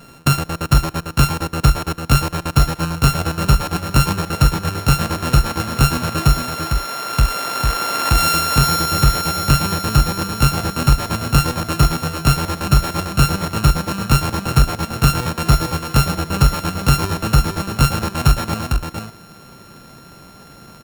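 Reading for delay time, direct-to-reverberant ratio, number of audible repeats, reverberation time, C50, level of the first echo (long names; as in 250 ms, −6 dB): 449 ms, no reverb audible, 1, no reverb audible, no reverb audible, −4.5 dB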